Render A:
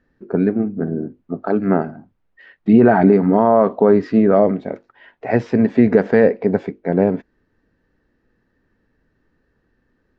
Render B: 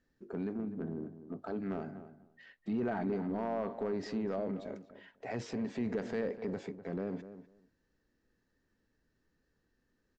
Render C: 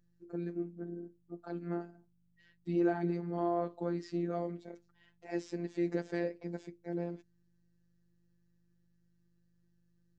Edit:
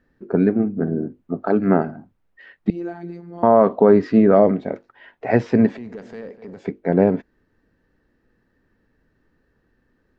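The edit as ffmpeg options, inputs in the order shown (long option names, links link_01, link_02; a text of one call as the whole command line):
ffmpeg -i take0.wav -i take1.wav -i take2.wav -filter_complex "[0:a]asplit=3[link_01][link_02][link_03];[link_01]atrim=end=2.702[link_04];[2:a]atrim=start=2.698:end=3.432[link_05];[link_02]atrim=start=3.428:end=5.772[link_06];[1:a]atrim=start=5.768:end=6.652[link_07];[link_03]atrim=start=6.648[link_08];[link_04][link_05]acrossfade=duration=0.004:curve1=hsin:curve2=hsin[link_09];[link_09][link_06]acrossfade=duration=0.004:curve1=hsin:curve2=hsin[link_10];[link_10][link_07]acrossfade=duration=0.004:curve1=hsin:curve2=hsin[link_11];[link_11][link_08]acrossfade=duration=0.004:curve1=hsin:curve2=hsin" out.wav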